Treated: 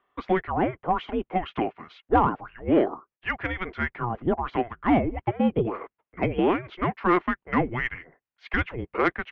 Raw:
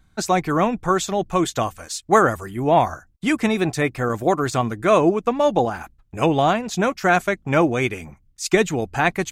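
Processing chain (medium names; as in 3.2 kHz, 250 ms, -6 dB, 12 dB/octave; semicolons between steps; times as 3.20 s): mistuned SSB -360 Hz 540–3100 Hz; saturation -6.5 dBFS, distortion -25 dB; trim -2 dB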